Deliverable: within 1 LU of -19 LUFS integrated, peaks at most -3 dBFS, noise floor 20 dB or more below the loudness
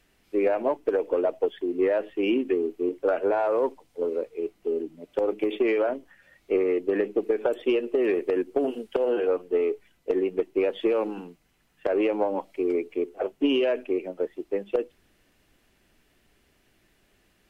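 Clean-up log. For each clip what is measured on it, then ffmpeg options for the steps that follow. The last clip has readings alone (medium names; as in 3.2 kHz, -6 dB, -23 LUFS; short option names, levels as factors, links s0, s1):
loudness -26.5 LUFS; peak level -13.0 dBFS; loudness target -19.0 LUFS
-> -af "volume=2.37"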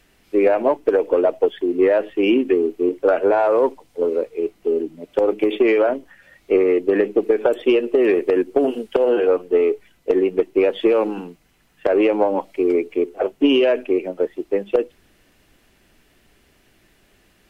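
loudness -19.0 LUFS; peak level -5.5 dBFS; noise floor -59 dBFS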